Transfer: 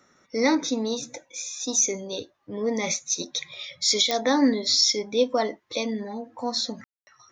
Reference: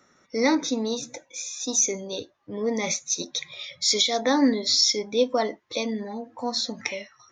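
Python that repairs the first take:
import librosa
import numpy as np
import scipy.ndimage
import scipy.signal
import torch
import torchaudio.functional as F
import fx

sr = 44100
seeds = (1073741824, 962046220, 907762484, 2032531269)

y = fx.fix_declick_ar(x, sr, threshold=10.0)
y = fx.fix_ambience(y, sr, seeds[0], print_start_s=2.0, print_end_s=2.5, start_s=6.84, end_s=7.07)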